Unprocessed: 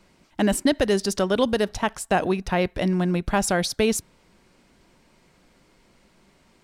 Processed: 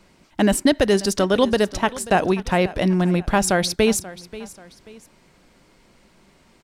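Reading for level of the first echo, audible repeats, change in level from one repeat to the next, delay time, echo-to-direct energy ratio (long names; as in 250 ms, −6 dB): −17.5 dB, 2, −8.5 dB, 535 ms, −17.0 dB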